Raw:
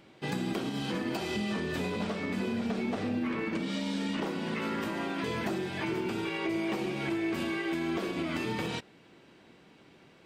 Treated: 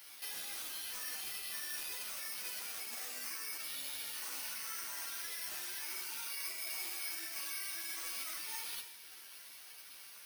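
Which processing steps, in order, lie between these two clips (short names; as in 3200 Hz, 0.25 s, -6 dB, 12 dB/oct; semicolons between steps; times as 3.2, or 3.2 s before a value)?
HPF 1400 Hz 12 dB/oct; limiter -37.5 dBFS, peak gain reduction 11 dB; compressor 2:1, threshold -57 dBFS, peak gain reduction 8 dB; reverb, pre-delay 3 ms, DRR 2 dB; careless resampling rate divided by 6×, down none, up zero stuff; ensemble effect; gain +5 dB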